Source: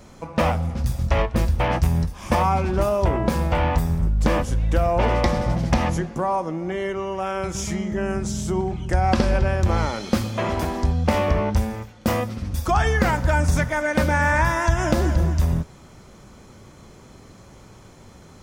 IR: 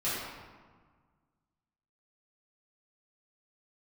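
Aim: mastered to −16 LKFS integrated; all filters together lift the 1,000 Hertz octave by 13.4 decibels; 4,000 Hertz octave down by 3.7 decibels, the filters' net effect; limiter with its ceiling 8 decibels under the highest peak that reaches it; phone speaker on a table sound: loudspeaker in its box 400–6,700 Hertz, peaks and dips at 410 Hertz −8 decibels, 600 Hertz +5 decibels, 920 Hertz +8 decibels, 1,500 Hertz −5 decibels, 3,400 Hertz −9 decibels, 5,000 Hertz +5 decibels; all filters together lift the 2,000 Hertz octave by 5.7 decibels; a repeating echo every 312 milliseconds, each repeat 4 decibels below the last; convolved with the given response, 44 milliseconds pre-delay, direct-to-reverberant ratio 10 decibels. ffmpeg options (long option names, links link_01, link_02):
-filter_complex "[0:a]equalizer=frequency=1000:width_type=o:gain=8.5,equalizer=frequency=2000:width_type=o:gain=8.5,equalizer=frequency=4000:width_type=o:gain=-7,alimiter=limit=-9.5dB:level=0:latency=1,aecho=1:1:312|624|936|1248|1560|1872|2184|2496|2808:0.631|0.398|0.25|0.158|0.0994|0.0626|0.0394|0.0249|0.0157,asplit=2[link_01][link_02];[1:a]atrim=start_sample=2205,adelay=44[link_03];[link_02][link_03]afir=irnorm=-1:irlink=0,volume=-18.5dB[link_04];[link_01][link_04]amix=inputs=2:normalize=0,highpass=frequency=400:width=0.5412,highpass=frequency=400:width=1.3066,equalizer=frequency=410:width_type=q:width=4:gain=-8,equalizer=frequency=600:width_type=q:width=4:gain=5,equalizer=frequency=920:width_type=q:width=4:gain=8,equalizer=frequency=1500:width_type=q:width=4:gain=-5,equalizer=frequency=3400:width_type=q:width=4:gain=-9,equalizer=frequency=5000:width_type=q:width=4:gain=5,lowpass=frequency=6700:width=0.5412,lowpass=frequency=6700:width=1.3066,volume=0.5dB"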